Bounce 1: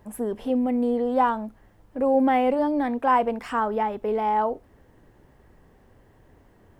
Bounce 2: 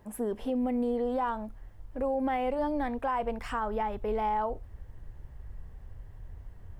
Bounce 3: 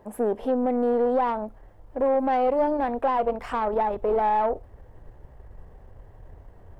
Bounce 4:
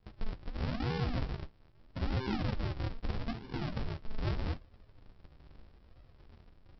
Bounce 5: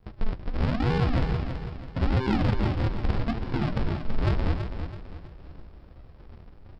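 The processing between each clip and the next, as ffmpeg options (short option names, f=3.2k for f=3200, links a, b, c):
-af "asubboost=boost=11.5:cutoff=83,alimiter=limit=-19dB:level=0:latency=1:release=118,volume=-3dB"
-af "aeval=exprs='(tanh(22.4*val(0)+0.55)-tanh(0.55))/22.4':c=same,equalizer=f=570:t=o:w=2.5:g=12.5"
-af "aresample=11025,acrusher=samples=34:mix=1:aa=0.000001:lfo=1:lforange=34:lforate=0.79,aresample=44100,flanger=delay=9.4:depth=5.8:regen=-47:speed=0.42:shape=sinusoidal,volume=-6.5dB"
-filter_complex "[0:a]asplit=2[a][b];[b]adynamicsmooth=sensitivity=4:basefreq=2.6k,volume=0dB[c];[a][c]amix=inputs=2:normalize=0,aecho=1:1:329|658|987|1316:0.398|0.151|0.0575|0.0218,volume=3.5dB"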